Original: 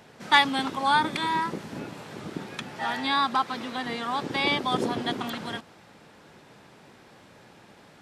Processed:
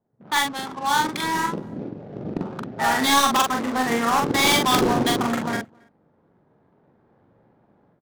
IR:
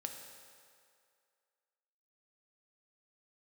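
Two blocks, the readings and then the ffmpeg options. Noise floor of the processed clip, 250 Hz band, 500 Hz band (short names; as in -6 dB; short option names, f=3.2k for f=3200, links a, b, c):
-63 dBFS, +7.0 dB, +7.5 dB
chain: -filter_complex "[0:a]afwtdn=0.0158,equalizer=f=2.7k:w=4.1:g=-6.5,dynaudnorm=f=720:g=3:m=15.5dB,aresample=16000,aeval=exprs='(mod(1.41*val(0)+1,2)-1)/1.41':c=same,aresample=44100,adynamicsmooth=sensitivity=7.5:basefreq=710,asplit=2[a][b];[b]acrusher=bits=2:mix=0:aa=0.5,volume=-6.5dB[c];[a][c]amix=inputs=2:normalize=0,asoftclip=type=hard:threshold=-12.5dB,asplit=2[d][e];[e]adelay=43,volume=-3dB[f];[d][f]amix=inputs=2:normalize=0,asplit=2[g][h];[h]adelay=274.1,volume=-29dB,highshelf=f=4k:g=-6.17[i];[g][i]amix=inputs=2:normalize=0,adynamicequalizer=threshold=0.0224:dfrequency=4200:dqfactor=0.7:tfrequency=4200:tqfactor=0.7:attack=5:release=100:ratio=0.375:range=3:mode=boostabove:tftype=highshelf,volume=-4.5dB"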